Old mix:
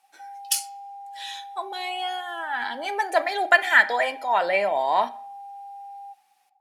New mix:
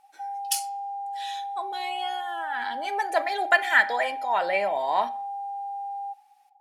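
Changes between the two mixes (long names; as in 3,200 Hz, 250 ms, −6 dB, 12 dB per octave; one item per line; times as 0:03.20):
speech −3.0 dB
background: remove formant resonators in series a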